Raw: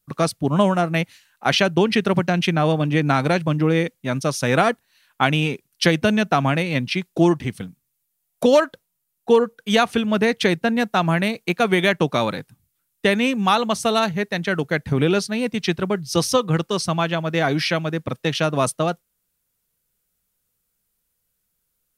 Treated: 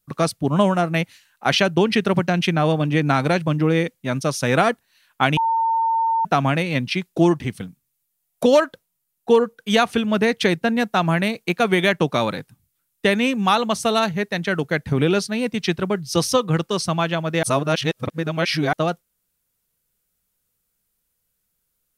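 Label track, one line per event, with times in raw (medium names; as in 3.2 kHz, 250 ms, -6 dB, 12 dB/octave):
5.370000	6.250000	bleep 906 Hz -16.5 dBFS
17.430000	18.730000	reverse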